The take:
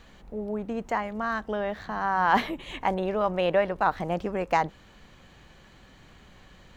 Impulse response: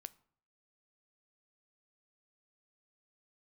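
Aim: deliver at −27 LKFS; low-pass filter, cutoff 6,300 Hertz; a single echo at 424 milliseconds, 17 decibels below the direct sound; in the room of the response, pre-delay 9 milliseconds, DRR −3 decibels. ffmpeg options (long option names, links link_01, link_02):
-filter_complex "[0:a]lowpass=6300,aecho=1:1:424:0.141,asplit=2[link_01][link_02];[1:a]atrim=start_sample=2205,adelay=9[link_03];[link_02][link_03]afir=irnorm=-1:irlink=0,volume=9dB[link_04];[link_01][link_04]amix=inputs=2:normalize=0,volume=-4dB"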